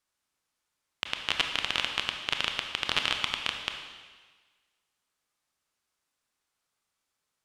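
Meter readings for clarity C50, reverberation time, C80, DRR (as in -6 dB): 5.5 dB, 1.4 s, 7.0 dB, 4.0 dB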